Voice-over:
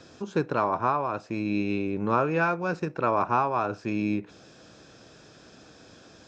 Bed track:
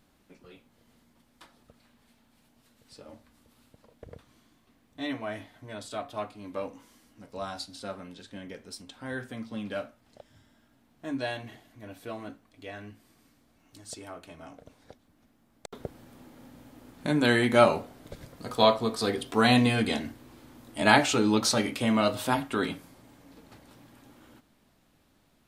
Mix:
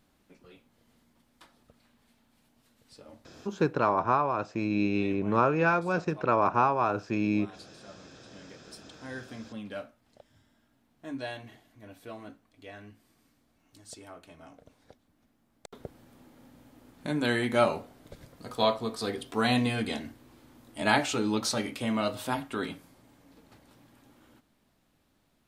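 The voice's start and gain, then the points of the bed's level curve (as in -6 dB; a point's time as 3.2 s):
3.25 s, 0.0 dB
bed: 3.44 s -2.5 dB
3.96 s -13 dB
7.89 s -13 dB
9.06 s -4.5 dB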